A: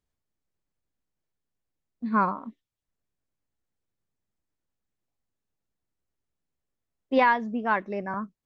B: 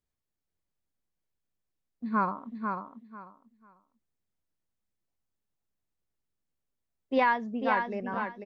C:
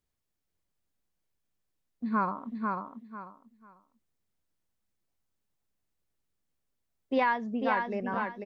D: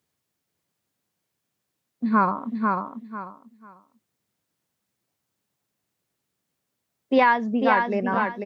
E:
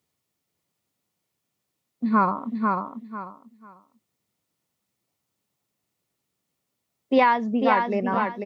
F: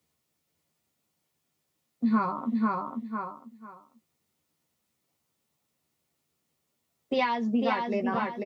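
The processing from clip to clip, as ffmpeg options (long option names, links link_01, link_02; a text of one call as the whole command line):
ffmpeg -i in.wav -af "aecho=1:1:494|988|1482:0.531|0.111|0.0234,volume=-4dB" out.wav
ffmpeg -i in.wav -af "acompressor=threshold=-34dB:ratio=1.5,volume=3dB" out.wav
ffmpeg -i in.wav -af "highpass=frequency=100:width=0.5412,highpass=frequency=100:width=1.3066,volume=8.5dB" out.wav
ffmpeg -i in.wav -af "bandreject=frequency=1600:width=8.1" out.wav
ffmpeg -i in.wav -filter_complex "[0:a]acrossover=split=150|3000[link_01][link_02][link_03];[link_02]acompressor=threshold=-29dB:ratio=3[link_04];[link_01][link_04][link_03]amix=inputs=3:normalize=0,asplit=2[link_05][link_06];[link_06]adelay=13,volume=-4.5dB[link_07];[link_05][link_07]amix=inputs=2:normalize=0" out.wav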